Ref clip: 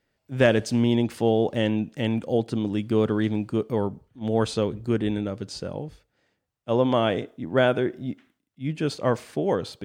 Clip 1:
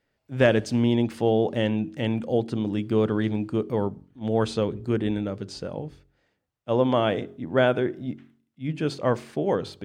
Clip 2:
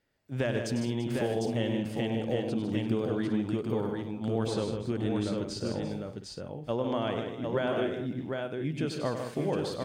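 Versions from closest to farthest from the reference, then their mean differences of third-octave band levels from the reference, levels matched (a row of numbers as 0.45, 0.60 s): 1, 2; 1.5, 7.5 dB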